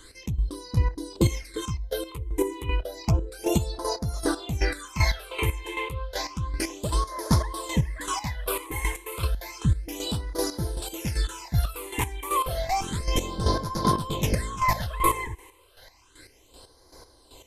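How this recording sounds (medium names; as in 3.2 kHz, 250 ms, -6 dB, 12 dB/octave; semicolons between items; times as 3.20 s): phasing stages 8, 0.31 Hz, lowest notch 180–2700 Hz; chopped level 2.6 Hz, depth 65%, duty 30%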